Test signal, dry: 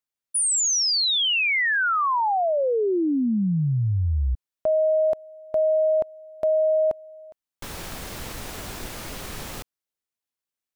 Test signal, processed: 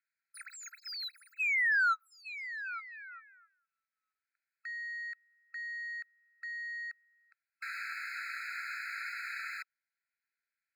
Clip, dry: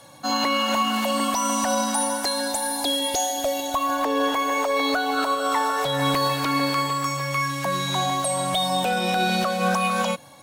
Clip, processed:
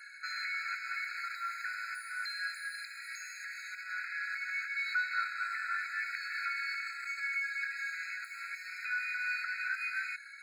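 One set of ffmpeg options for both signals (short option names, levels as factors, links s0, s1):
-filter_complex "[0:a]asplit=2[s0][s1];[s1]highpass=f=720:p=1,volume=25.1,asoftclip=type=tanh:threshold=0.282[s2];[s0][s2]amix=inputs=2:normalize=0,lowpass=f=1800:p=1,volume=0.501,bass=f=250:g=12,treble=f=4000:g=-13,afftfilt=real='re*eq(mod(floor(b*sr/1024/1300),2),1)':imag='im*eq(mod(floor(b*sr/1024/1300),2),1)':win_size=1024:overlap=0.75,volume=0.376"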